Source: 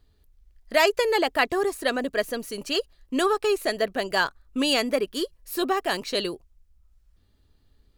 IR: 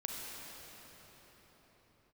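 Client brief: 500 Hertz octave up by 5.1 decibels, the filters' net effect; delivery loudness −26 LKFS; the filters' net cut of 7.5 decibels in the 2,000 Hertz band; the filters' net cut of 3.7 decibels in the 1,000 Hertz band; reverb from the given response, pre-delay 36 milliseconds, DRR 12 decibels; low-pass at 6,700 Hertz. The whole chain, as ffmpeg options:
-filter_complex "[0:a]lowpass=6700,equalizer=frequency=500:width_type=o:gain=9,equalizer=frequency=1000:width_type=o:gain=-8,equalizer=frequency=2000:width_type=o:gain=-7.5,asplit=2[link_01][link_02];[1:a]atrim=start_sample=2205,adelay=36[link_03];[link_02][link_03]afir=irnorm=-1:irlink=0,volume=-13.5dB[link_04];[link_01][link_04]amix=inputs=2:normalize=0,volume=-3.5dB"

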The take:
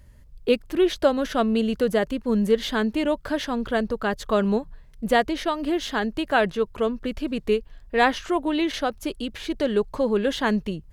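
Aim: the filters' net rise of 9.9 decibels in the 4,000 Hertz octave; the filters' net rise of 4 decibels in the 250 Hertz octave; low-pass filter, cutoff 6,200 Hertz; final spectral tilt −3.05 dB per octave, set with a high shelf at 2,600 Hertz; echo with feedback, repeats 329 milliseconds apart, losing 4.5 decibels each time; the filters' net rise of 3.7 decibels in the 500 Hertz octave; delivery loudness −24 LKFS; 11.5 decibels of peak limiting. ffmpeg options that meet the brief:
ffmpeg -i in.wav -af "lowpass=6200,equalizer=frequency=250:width_type=o:gain=4,equalizer=frequency=500:width_type=o:gain=3,highshelf=frequency=2600:gain=7,equalizer=frequency=4000:width_type=o:gain=7.5,alimiter=limit=-12.5dB:level=0:latency=1,aecho=1:1:329|658|987|1316|1645|1974|2303|2632|2961:0.596|0.357|0.214|0.129|0.0772|0.0463|0.0278|0.0167|0.01,volume=-3dB" out.wav

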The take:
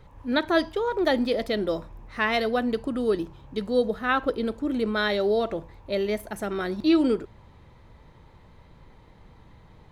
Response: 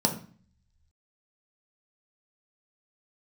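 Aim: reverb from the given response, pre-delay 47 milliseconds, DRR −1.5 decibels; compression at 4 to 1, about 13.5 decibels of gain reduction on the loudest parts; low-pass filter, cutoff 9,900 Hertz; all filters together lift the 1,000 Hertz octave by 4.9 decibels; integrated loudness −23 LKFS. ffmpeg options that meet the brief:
-filter_complex "[0:a]lowpass=9900,equalizer=frequency=1000:width_type=o:gain=6.5,acompressor=threshold=-32dB:ratio=4,asplit=2[link_01][link_02];[1:a]atrim=start_sample=2205,adelay=47[link_03];[link_02][link_03]afir=irnorm=-1:irlink=0,volume=-9dB[link_04];[link_01][link_04]amix=inputs=2:normalize=0,volume=4.5dB"

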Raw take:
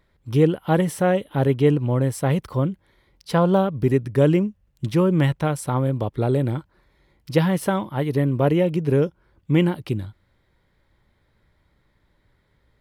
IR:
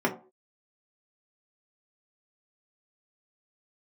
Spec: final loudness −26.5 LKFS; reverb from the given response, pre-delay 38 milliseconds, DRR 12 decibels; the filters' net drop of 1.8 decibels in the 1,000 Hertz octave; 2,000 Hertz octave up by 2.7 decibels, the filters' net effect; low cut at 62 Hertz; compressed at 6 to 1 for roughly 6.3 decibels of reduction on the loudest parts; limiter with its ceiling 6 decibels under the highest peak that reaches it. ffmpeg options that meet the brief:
-filter_complex "[0:a]highpass=62,equalizer=frequency=1000:width_type=o:gain=-3.5,equalizer=frequency=2000:width_type=o:gain=4.5,acompressor=threshold=-19dB:ratio=6,alimiter=limit=-16.5dB:level=0:latency=1,asplit=2[link_01][link_02];[1:a]atrim=start_sample=2205,adelay=38[link_03];[link_02][link_03]afir=irnorm=-1:irlink=0,volume=-24.5dB[link_04];[link_01][link_04]amix=inputs=2:normalize=0"

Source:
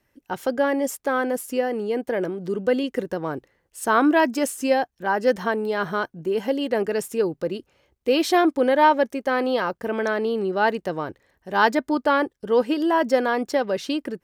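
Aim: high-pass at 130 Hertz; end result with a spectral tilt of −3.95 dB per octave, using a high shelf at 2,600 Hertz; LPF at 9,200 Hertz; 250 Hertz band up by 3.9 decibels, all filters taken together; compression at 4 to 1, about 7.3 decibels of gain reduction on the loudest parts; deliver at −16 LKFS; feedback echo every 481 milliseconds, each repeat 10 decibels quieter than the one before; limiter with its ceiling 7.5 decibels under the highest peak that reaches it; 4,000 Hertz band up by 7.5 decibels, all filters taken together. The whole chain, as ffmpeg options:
ffmpeg -i in.wav -af "highpass=130,lowpass=9200,equalizer=frequency=250:width_type=o:gain=5,highshelf=frequency=2600:gain=5.5,equalizer=frequency=4000:width_type=o:gain=5.5,acompressor=threshold=-20dB:ratio=4,alimiter=limit=-16dB:level=0:latency=1,aecho=1:1:481|962|1443|1924:0.316|0.101|0.0324|0.0104,volume=10dB" out.wav

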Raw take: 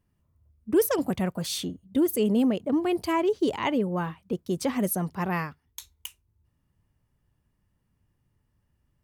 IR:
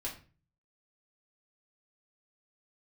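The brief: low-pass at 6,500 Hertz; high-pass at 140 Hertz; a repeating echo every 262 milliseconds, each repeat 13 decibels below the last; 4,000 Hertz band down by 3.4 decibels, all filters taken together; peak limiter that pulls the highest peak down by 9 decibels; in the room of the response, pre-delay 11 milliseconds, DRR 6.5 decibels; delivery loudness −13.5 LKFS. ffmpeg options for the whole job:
-filter_complex "[0:a]highpass=140,lowpass=6500,equalizer=frequency=4000:width_type=o:gain=-4,alimiter=limit=-22dB:level=0:latency=1,aecho=1:1:262|524|786:0.224|0.0493|0.0108,asplit=2[link_01][link_02];[1:a]atrim=start_sample=2205,adelay=11[link_03];[link_02][link_03]afir=irnorm=-1:irlink=0,volume=-7dB[link_04];[link_01][link_04]amix=inputs=2:normalize=0,volume=16.5dB"

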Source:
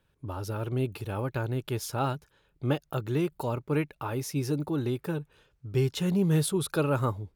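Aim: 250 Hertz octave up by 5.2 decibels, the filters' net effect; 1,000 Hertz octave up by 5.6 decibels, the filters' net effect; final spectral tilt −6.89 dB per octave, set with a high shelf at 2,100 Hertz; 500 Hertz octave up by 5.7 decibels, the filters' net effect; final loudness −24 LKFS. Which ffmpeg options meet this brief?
ffmpeg -i in.wav -af "equalizer=frequency=250:width_type=o:gain=6,equalizer=frequency=500:width_type=o:gain=4,equalizer=frequency=1000:width_type=o:gain=6.5,highshelf=frequency=2100:gain=-3.5,volume=2dB" out.wav

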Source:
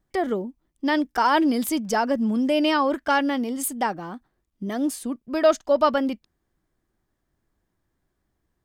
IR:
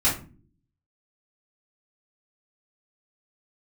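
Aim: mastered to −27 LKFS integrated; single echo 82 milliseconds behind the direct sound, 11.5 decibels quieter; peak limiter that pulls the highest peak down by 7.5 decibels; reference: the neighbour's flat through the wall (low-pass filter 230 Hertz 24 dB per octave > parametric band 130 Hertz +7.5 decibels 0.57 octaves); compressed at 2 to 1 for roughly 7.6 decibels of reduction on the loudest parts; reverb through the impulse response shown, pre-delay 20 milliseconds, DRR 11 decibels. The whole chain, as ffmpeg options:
-filter_complex "[0:a]acompressor=threshold=-27dB:ratio=2,alimiter=limit=-22dB:level=0:latency=1,aecho=1:1:82:0.266,asplit=2[link_01][link_02];[1:a]atrim=start_sample=2205,adelay=20[link_03];[link_02][link_03]afir=irnorm=-1:irlink=0,volume=-24.5dB[link_04];[link_01][link_04]amix=inputs=2:normalize=0,lowpass=frequency=230:width=0.5412,lowpass=frequency=230:width=1.3066,equalizer=frequency=130:width_type=o:width=0.57:gain=7.5,volume=10dB"

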